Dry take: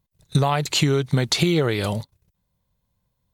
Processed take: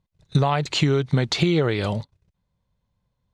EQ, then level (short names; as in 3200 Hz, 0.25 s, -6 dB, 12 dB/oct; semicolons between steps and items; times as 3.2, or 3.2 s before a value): air absorption 96 m; 0.0 dB